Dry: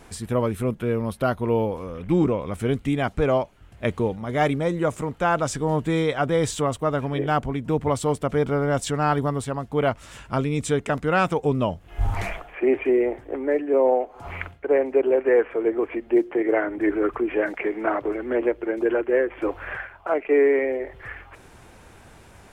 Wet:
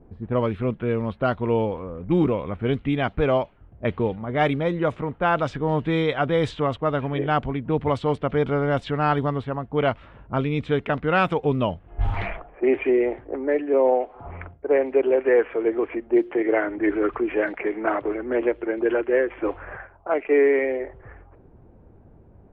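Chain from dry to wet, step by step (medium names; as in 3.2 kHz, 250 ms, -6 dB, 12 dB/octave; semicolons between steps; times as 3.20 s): resonant high shelf 4.9 kHz -11.5 dB, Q 1.5; level-controlled noise filter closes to 400 Hz, open at -16 dBFS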